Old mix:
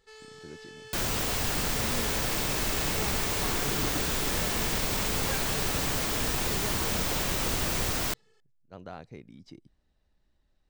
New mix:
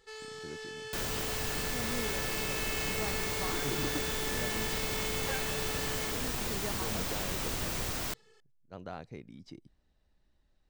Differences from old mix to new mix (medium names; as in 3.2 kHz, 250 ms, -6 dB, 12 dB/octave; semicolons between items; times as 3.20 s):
first sound +4.5 dB; second sound -6.0 dB